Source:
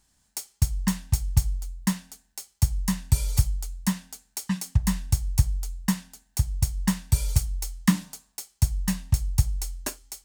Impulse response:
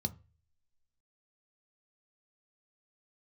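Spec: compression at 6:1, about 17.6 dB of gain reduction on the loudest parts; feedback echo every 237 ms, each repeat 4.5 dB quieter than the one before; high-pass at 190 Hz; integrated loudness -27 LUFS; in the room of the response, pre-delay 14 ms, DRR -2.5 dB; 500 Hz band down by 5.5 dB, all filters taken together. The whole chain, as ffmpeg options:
-filter_complex "[0:a]highpass=190,equalizer=f=500:t=o:g=-7.5,acompressor=threshold=0.0141:ratio=6,aecho=1:1:237|474|711|948|1185|1422|1659|1896|2133:0.596|0.357|0.214|0.129|0.0772|0.0463|0.0278|0.0167|0.01,asplit=2[s0][s1];[1:a]atrim=start_sample=2205,adelay=14[s2];[s1][s2]afir=irnorm=-1:irlink=0,volume=1.19[s3];[s0][s3]amix=inputs=2:normalize=0,volume=1.58"

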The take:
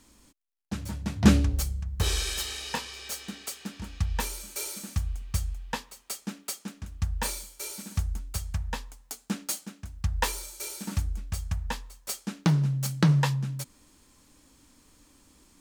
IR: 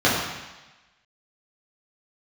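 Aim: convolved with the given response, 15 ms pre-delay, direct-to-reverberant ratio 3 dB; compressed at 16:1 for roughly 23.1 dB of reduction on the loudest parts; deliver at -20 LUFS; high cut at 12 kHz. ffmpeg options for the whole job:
-filter_complex "[0:a]lowpass=12000,acompressor=threshold=0.0178:ratio=16,asplit=2[s0][s1];[1:a]atrim=start_sample=2205,adelay=15[s2];[s1][s2]afir=irnorm=-1:irlink=0,volume=0.0631[s3];[s0][s3]amix=inputs=2:normalize=0,volume=8.91"

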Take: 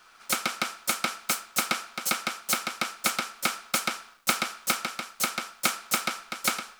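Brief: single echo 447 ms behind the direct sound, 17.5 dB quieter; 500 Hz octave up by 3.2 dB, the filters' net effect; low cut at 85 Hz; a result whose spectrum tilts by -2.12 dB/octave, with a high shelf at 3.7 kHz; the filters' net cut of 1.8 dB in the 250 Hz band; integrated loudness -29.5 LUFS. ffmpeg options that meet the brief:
-af "highpass=85,equalizer=f=250:t=o:g=-3.5,equalizer=f=500:t=o:g=5,highshelf=f=3700:g=-7,aecho=1:1:447:0.133,volume=1.19"

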